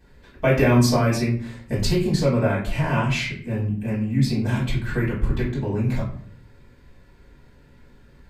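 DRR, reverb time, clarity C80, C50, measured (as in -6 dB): -8.0 dB, 0.55 s, 10.0 dB, 5.5 dB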